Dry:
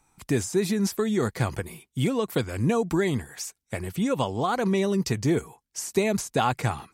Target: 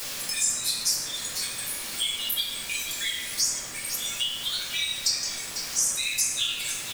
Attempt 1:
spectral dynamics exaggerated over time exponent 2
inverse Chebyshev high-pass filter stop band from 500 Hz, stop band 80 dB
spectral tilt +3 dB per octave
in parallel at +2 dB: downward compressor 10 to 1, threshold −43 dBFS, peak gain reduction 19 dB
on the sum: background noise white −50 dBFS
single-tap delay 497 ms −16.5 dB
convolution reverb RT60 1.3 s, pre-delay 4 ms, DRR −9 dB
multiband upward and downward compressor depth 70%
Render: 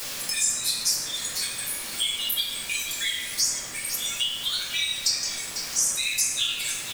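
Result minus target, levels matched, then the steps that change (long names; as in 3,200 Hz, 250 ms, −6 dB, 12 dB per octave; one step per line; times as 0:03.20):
downward compressor: peak gain reduction −8 dB
change: downward compressor 10 to 1, threshold −52 dBFS, peak gain reduction 27 dB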